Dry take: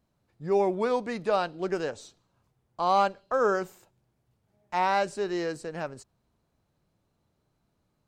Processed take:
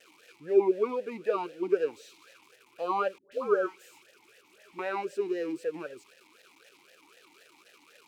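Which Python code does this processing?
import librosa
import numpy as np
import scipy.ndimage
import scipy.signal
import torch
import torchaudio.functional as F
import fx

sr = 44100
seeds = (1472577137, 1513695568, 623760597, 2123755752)

y = x + 0.5 * 10.0 ** (-28.5 / 20.0) * np.diff(np.sign(x), prepend=np.sign(x[:1]))
y = fx.dispersion(y, sr, late='highs', ms=137.0, hz=740.0, at=(3.18, 4.79))
y = fx.vowel_sweep(y, sr, vowels='e-u', hz=3.9)
y = F.gain(torch.from_numpy(y), 8.0).numpy()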